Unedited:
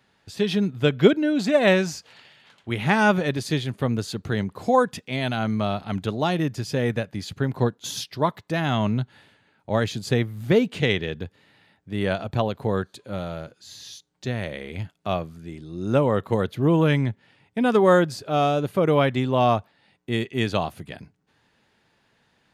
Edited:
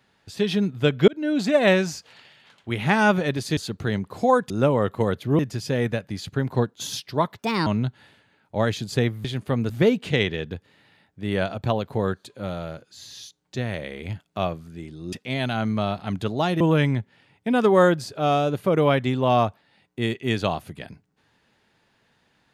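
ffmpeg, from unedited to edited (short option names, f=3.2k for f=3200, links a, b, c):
-filter_complex "[0:a]asplit=11[a][b][c][d][e][f][g][h][i][j][k];[a]atrim=end=1.08,asetpts=PTS-STARTPTS,afade=t=out:st=1.076:d=0.004:c=hsin[l];[b]atrim=start=1.08:end=3.572,asetpts=PTS-STARTPTS,afade=t=in:d=0.25[m];[c]atrim=start=4.018:end=4.952[n];[d]atrim=start=15.818:end=16.712[o];[e]atrim=start=6.428:end=8.434[p];[f]atrim=start=8.43:end=8.81,asetpts=PTS-STARTPTS,asetrate=60858,aresample=44100,atrim=end_sample=12143,asetpts=PTS-STARTPTS[q];[g]atrim=start=8.806:end=10.392[r];[h]atrim=start=3.568:end=4.022[s];[i]atrim=start=10.388:end=15.822[t];[j]atrim=start=4.948:end=6.432[u];[k]atrim=start=16.708[v];[l][m]concat=n=2:v=0:a=1[w];[w][n]acrossfade=d=0.004:c1=hsin:c2=hsin[x];[x][o]acrossfade=d=0.004:c1=hsin:c2=hsin[y];[y][p]acrossfade=d=0.004:c1=hsin:c2=hsin[z];[z][q]acrossfade=d=0.004:c1=hsin:c2=hsin[aa];[aa][r]acrossfade=d=0.004:c1=hsin:c2=hsin[ab];[ab][s]acrossfade=d=0.004:c1=hsin:c2=hsin[ac];[ac][t]acrossfade=d=0.004:c1=hsin:c2=hsin[ad];[ad][u]acrossfade=d=0.004:c1=hsin:c2=hsin[ae];[ae][v]acrossfade=d=0.004:c1=hsin:c2=hsin"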